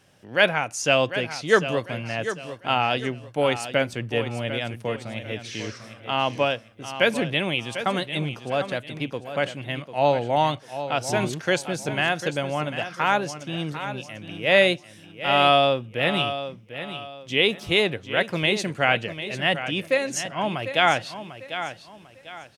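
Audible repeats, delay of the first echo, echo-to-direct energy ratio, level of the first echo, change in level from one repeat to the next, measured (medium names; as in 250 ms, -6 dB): 3, 747 ms, -10.5 dB, -11.0 dB, -10.0 dB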